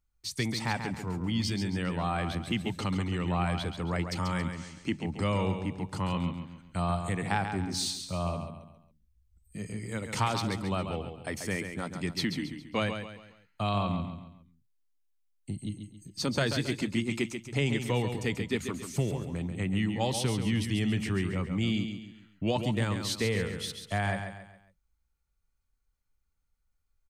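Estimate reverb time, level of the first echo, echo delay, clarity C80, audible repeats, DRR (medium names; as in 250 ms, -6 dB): no reverb, -7.5 dB, 137 ms, no reverb, 4, no reverb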